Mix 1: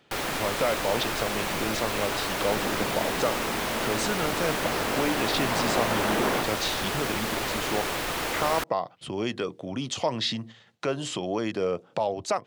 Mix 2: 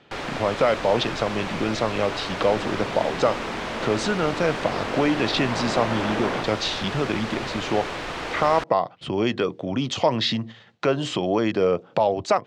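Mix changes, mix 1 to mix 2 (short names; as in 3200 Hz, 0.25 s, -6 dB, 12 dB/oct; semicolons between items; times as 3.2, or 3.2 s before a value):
speech +7.0 dB; master: add air absorption 110 m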